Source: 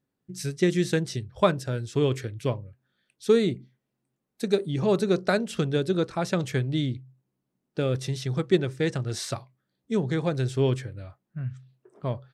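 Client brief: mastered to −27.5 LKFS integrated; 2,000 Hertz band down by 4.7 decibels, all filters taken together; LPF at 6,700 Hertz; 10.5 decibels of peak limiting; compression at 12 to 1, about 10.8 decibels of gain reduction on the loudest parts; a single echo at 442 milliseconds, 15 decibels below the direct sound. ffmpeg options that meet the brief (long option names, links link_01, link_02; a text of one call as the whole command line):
ffmpeg -i in.wav -af "lowpass=6700,equalizer=frequency=2000:width_type=o:gain=-6.5,acompressor=threshold=-26dB:ratio=12,alimiter=level_in=1.5dB:limit=-24dB:level=0:latency=1,volume=-1.5dB,aecho=1:1:442:0.178,volume=8.5dB" out.wav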